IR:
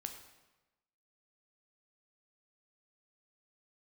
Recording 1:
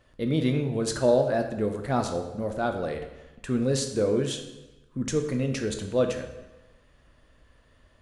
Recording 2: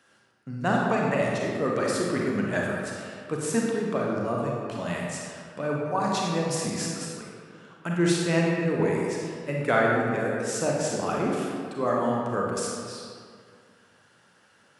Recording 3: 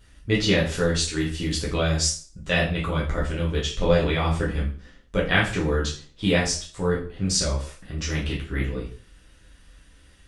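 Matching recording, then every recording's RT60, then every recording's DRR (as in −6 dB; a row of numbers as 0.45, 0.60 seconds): 1; 1.1, 2.1, 0.40 seconds; 5.0, −2.5, −5.5 decibels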